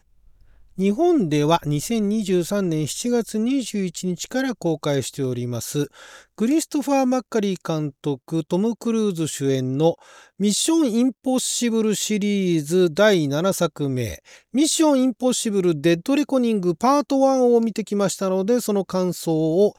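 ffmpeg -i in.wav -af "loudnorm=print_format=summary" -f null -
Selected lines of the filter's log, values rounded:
Input Integrated:    -21.0 LUFS
Input True Peak:      -5.7 dBTP
Input LRA:             3.8 LU
Input Threshold:     -31.2 LUFS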